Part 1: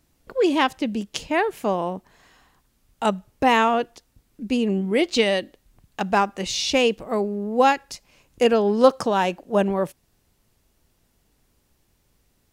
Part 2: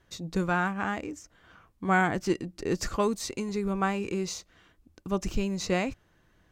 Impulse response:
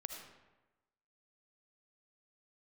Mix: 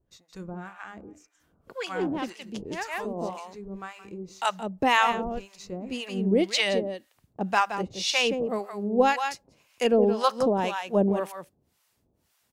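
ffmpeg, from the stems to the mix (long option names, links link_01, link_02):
-filter_complex "[0:a]highpass=86,aeval=exprs='0.708*(cos(1*acos(clip(val(0)/0.708,-1,1)))-cos(1*PI/2))+0.0224*(cos(2*acos(clip(val(0)/0.708,-1,1)))-cos(2*PI/2))':channel_layout=same,adelay=1400,volume=0.5dB,asplit=2[link_01][link_02];[link_02]volume=-8dB[link_03];[1:a]bandreject=frequency=100.3:width_type=h:width=4,bandreject=frequency=200.6:width_type=h:width=4,bandreject=frequency=300.9:width_type=h:width=4,bandreject=frequency=401.2:width_type=h:width=4,bandreject=frequency=501.5:width_type=h:width=4,bandreject=frequency=601.8:width_type=h:width=4,bandreject=frequency=702.1:width_type=h:width=4,bandreject=frequency=802.4:width_type=h:width=4,bandreject=frequency=902.7:width_type=h:width=4,bandreject=frequency=1003:width_type=h:width=4,bandreject=frequency=1103.3:width_type=h:width=4,bandreject=frequency=1203.6:width_type=h:width=4,bandreject=frequency=1303.9:width_type=h:width=4,bandreject=frequency=1404.2:width_type=h:width=4,bandreject=frequency=1504.5:width_type=h:width=4,bandreject=frequency=1604.8:width_type=h:width=4,bandreject=frequency=1705.1:width_type=h:width=4,bandreject=frequency=1805.4:width_type=h:width=4,bandreject=frequency=1905.7:width_type=h:width=4,bandreject=frequency=2006:width_type=h:width=4,bandreject=frequency=2106.3:width_type=h:width=4,bandreject=frequency=2206.6:width_type=h:width=4,bandreject=frequency=2306.9:width_type=h:width=4,bandreject=frequency=2407.2:width_type=h:width=4,bandreject=frequency=2507.5:width_type=h:width=4,bandreject=frequency=2607.8:width_type=h:width=4,volume=-6.5dB,asplit=3[link_04][link_05][link_06];[link_05]volume=-15dB[link_07];[link_06]apad=whole_len=614169[link_08];[link_01][link_08]sidechaincompress=threshold=-42dB:ratio=8:attack=11:release=135[link_09];[link_03][link_07]amix=inputs=2:normalize=0,aecho=0:1:172:1[link_10];[link_09][link_04][link_10]amix=inputs=3:normalize=0,acrossover=split=740[link_11][link_12];[link_11]aeval=exprs='val(0)*(1-1/2+1/2*cos(2*PI*1.9*n/s))':channel_layout=same[link_13];[link_12]aeval=exprs='val(0)*(1-1/2-1/2*cos(2*PI*1.9*n/s))':channel_layout=same[link_14];[link_13][link_14]amix=inputs=2:normalize=0"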